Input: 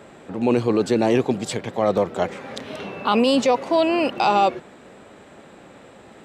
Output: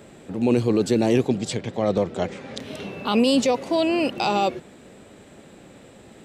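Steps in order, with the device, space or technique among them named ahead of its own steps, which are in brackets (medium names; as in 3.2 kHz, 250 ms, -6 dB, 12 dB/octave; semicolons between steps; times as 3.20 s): smiley-face EQ (bass shelf 160 Hz +4 dB; peaking EQ 1.1 kHz -7 dB 1.8 oct; treble shelf 7.7 kHz +6.5 dB); 1.28–2.60 s: low-pass 7 kHz 12 dB/octave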